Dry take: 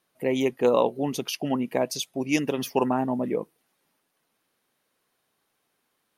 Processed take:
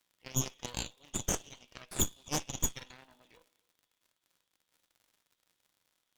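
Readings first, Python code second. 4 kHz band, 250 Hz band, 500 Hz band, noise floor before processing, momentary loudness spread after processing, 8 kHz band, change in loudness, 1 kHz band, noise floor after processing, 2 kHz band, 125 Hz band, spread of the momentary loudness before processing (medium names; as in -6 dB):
-6.0 dB, -17.5 dB, -22.0 dB, -75 dBFS, 16 LU, +4.0 dB, -9.5 dB, -16.0 dB, -84 dBFS, -11.5 dB, -4.5 dB, 8 LU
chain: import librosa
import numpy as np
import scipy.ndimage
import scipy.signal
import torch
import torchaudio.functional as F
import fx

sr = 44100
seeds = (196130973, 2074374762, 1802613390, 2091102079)

y = fx.bandpass_q(x, sr, hz=3400.0, q=11.0)
y = y + 10.0 ** (-23.5 / 20.0) * np.pad(y, (int(263 * sr / 1000.0), 0))[:len(y)]
y = fx.dmg_crackle(y, sr, seeds[0], per_s=200.0, level_db=-58.0)
y = 10.0 ** (-32.0 / 20.0) * np.tanh(y / 10.0 ** (-32.0 / 20.0))
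y = fx.rev_double_slope(y, sr, seeds[1], early_s=0.26, late_s=1.5, knee_db=-18, drr_db=4.5)
y = fx.cheby_harmonics(y, sr, harmonics=(3, 4, 8), levels_db=(-7, -6, -12), full_scale_db=-25.0)
y = y * 10.0 ** (7.0 / 20.0)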